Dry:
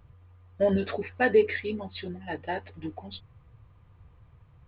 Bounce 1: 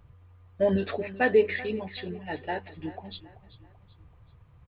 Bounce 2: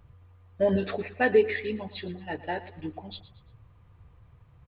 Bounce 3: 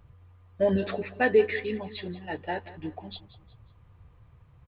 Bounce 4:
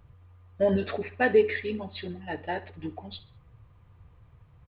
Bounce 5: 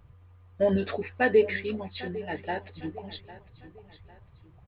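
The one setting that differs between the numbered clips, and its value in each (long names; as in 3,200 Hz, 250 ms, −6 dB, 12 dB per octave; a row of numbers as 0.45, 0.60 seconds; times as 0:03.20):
repeating echo, delay time: 384, 115, 182, 65, 802 milliseconds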